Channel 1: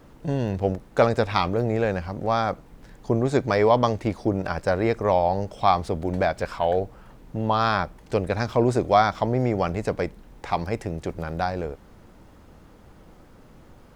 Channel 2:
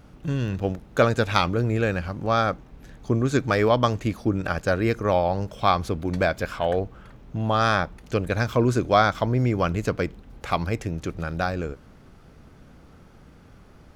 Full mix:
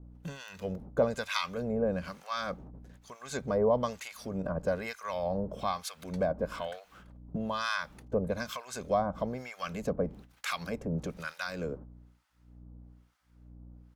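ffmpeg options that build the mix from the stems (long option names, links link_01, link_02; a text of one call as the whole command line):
ffmpeg -i stem1.wav -i stem2.wav -filter_complex "[0:a]agate=range=-9dB:threshold=-36dB:ratio=16:detection=peak,volume=-7.5dB,asplit=2[link_01][link_02];[1:a]agate=range=-23dB:threshold=-42dB:ratio=16:detection=peak,highpass=frequency=140:width=0.5412,highpass=frequency=140:width=1.3066,highshelf=frequency=3900:gain=7.5,adelay=1.5,volume=1.5dB[link_03];[link_02]apad=whole_len=615580[link_04];[link_03][link_04]sidechaincompress=threshold=-35dB:ratio=8:attack=5.6:release=176[link_05];[link_01][link_05]amix=inputs=2:normalize=0,aeval=exprs='val(0)+0.00398*(sin(2*PI*60*n/s)+sin(2*PI*2*60*n/s)/2+sin(2*PI*3*60*n/s)/3+sin(2*PI*4*60*n/s)/4+sin(2*PI*5*60*n/s)/5)':channel_layout=same,acrossover=split=1000[link_06][link_07];[link_06]aeval=exprs='val(0)*(1-1/2+1/2*cos(2*PI*1.1*n/s))':channel_layout=same[link_08];[link_07]aeval=exprs='val(0)*(1-1/2-1/2*cos(2*PI*1.1*n/s))':channel_layout=same[link_09];[link_08][link_09]amix=inputs=2:normalize=0" out.wav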